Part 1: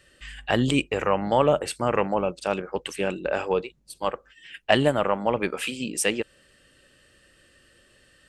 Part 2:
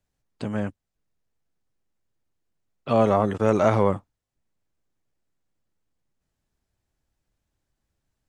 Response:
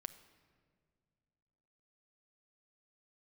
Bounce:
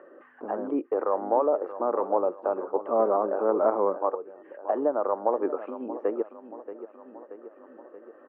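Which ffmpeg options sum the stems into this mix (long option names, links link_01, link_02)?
-filter_complex "[0:a]equalizer=frequency=530:width_type=o:width=2.4:gain=3,alimiter=limit=-11.5dB:level=0:latency=1:release=186,volume=1.5dB,asplit=2[link_01][link_02];[link_02]volume=-13dB[link_03];[1:a]volume=-1dB,asplit=2[link_04][link_05];[link_05]apad=whole_len=365331[link_06];[link_01][link_06]sidechaincompress=threshold=-28dB:ratio=8:attack=12:release=110[link_07];[link_03]aecho=0:1:630|1260|1890|2520|3150:1|0.39|0.152|0.0593|0.0231[link_08];[link_07][link_04][link_08]amix=inputs=3:normalize=0,acompressor=mode=upward:threshold=-30dB:ratio=2.5,aeval=exprs='0.501*(cos(1*acos(clip(val(0)/0.501,-1,1)))-cos(1*PI/2))+0.0355*(cos(3*acos(clip(val(0)/0.501,-1,1)))-cos(3*PI/2))+0.0251*(cos(6*acos(clip(val(0)/0.501,-1,1)))-cos(6*PI/2))+0.0141*(cos(8*acos(clip(val(0)/0.501,-1,1)))-cos(8*PI/2))':channel_layout=same,asuperpass=centerf=590:order=8:qfactor=0.61"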